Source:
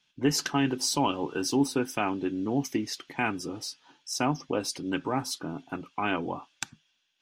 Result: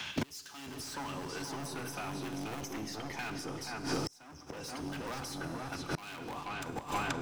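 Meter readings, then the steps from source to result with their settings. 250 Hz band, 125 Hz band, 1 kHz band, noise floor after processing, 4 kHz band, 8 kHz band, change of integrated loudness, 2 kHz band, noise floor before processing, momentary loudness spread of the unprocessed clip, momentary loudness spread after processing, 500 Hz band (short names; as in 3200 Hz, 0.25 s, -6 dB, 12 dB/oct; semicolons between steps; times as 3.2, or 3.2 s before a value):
-11.0 dB, -6.0 dB, -7.5 dB, -53 dBFS, -8.5 dB, -10.0 dB, -9.5 dB, -6.0 dB, -72 dBFS, 11 LU, 7 LU, -10.0 dB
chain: octaver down 1 oct, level -3 dB; HPF 49 Hz 24 dB/oct; high shelf 8200 Hz +5 dB; in parallel at -5 dB: wrapped overs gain 23 dB; on the sum: sample leveller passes 3; low shelf 430 Hz -8.5 dB; notches 60/120/180/240/300/360/420/480 Hz; darkening echo 0.48 s, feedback 39%, low-pass 2100 Hz, level -6 dB; limiter -17.5 dBFS, peak gain reduction 8 dB; Schroeder reverb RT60 1.5 s, combs from 33 ms, DRR 10 dB; flipped gate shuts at -21 dBFS, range -33 dB; three-band squash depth 100%; gain +11.5 dB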